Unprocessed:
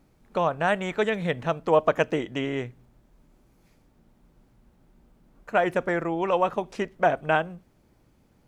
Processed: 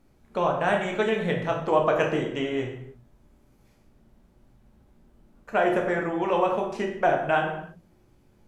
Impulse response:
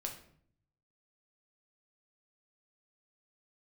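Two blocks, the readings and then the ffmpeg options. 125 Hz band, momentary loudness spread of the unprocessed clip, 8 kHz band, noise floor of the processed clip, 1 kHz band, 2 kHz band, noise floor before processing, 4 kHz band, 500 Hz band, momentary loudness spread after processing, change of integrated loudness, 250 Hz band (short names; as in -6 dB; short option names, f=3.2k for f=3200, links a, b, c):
0.0 dB, 9 LU, n/a, -61 dBFS, +0.5 dB, 0.0 dB, -63 dBFS, +0.5 dB, +0.5 dB, 8 LU, +0.5 dB, +1.0 dB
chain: -filter_complex "[1:a]atrim=start_sample=2205,afade=t=out:st=0.27:d=0.01,atrim=end_sample=12348,asetrate=29106,aresample=44100[a];[0:a][a]afir=irnorm=-1:irlink=0,volume=-1.5dB"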